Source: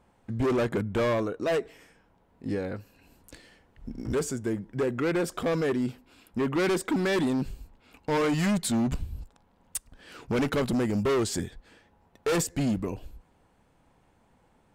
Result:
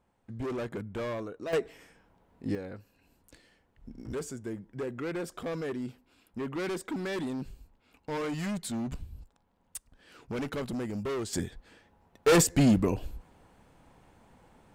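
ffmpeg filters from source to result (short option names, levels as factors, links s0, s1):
-af "asetnsamples=n=441:p=0,asendcmd='1.53 volume volume -0.5dB;2.55 volume volume -8dB;11.33 volume volume -1dB;12.27 volume volume 5dB',volume=0.355"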